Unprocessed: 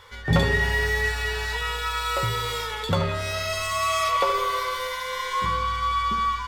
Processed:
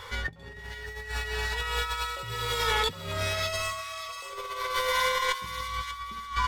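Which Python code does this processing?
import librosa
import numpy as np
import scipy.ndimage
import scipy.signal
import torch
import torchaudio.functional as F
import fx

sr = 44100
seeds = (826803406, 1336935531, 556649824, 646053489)

p1 = fx.over_compress(x, sr, threshold_db=-31.0, ratio=-0.5)
y = p1 + fx.echo_wet_highpass(p1, sr, ms=589, feedback_pct=31, hz=1900.0, wet_db=-9.0, dry=0)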